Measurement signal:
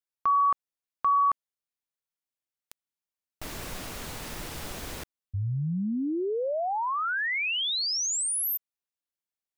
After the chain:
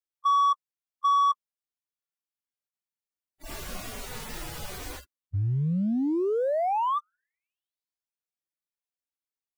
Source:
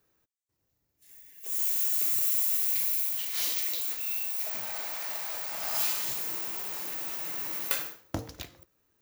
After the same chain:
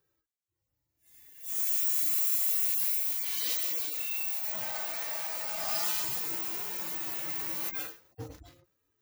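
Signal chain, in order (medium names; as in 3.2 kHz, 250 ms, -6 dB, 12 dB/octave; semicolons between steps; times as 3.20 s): harmonic-percussive separation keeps harmonic; waveshaping leveller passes 1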